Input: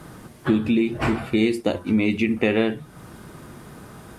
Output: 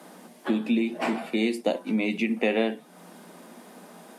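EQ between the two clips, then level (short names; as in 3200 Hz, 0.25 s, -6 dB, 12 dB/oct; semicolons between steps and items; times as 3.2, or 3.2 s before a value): rippled Chebyshev high-pass 170 Hz, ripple 6 dB; low shelf 390 Hz -7.5 dB; bell 1300 Hz -7 dB 0.7 oct; +3.5 dB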